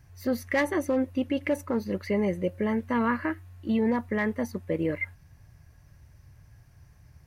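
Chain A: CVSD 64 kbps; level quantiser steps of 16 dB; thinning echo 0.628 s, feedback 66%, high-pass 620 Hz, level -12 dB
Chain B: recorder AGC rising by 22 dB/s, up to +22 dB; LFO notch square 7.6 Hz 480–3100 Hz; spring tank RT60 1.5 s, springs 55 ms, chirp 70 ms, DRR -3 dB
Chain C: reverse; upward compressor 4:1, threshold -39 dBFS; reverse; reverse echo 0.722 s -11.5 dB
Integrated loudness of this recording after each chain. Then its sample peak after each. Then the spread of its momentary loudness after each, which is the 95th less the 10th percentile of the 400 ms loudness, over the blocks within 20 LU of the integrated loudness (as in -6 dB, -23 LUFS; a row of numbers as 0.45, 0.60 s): -35.0, -25.5, -28.0 LUFS; -18.5, -11.0, -15.0 dBFS; 17, 9, 22 LU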